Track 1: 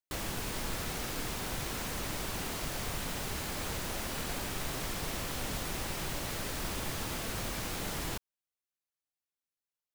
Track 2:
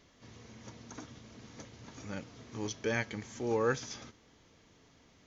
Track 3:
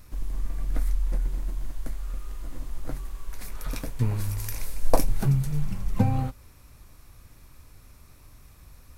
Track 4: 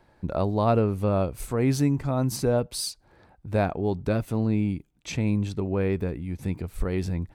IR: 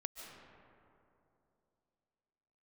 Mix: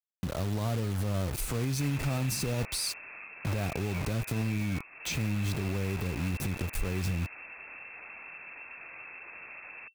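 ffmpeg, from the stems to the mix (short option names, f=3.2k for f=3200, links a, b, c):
-filter_complex "[0:a]adelay=1700,volume=-3.5dB[a];[1:a]adelay=1100,volume=-2dB[b];[3:a]alimiter=limit=-20dB:level=0:latency=1:release=148,acrossover=split=180|3000[c][d][e];[d]acompressor=threshold=-37dB:ratio=6[f];[c][f][e]amix=inputs=3:normalize=0,acrusher=bits=6:mix=0:aa=0.000001,volume=0.5dB[g];[a][b]amix=inputs=2:normalize=0,lowpass=f=2.3k:t=q:w=0.5098,lowpass=f=2.3k:t=q:w=0.6013,lowpass=f=2.3k:t=q:w=0.9,lowpass=f=2.3k:t=q:w=2.563,afreqshift=-2700,acompressor=threshold=-42dB:ratio=16,volume=0dB[h];[g]acontrast=84,alimiter=limit=-23.5dB:level=0:latency=1:release=80,volume=0dB[i];[h][i]amix=inputs=2:normalize=0"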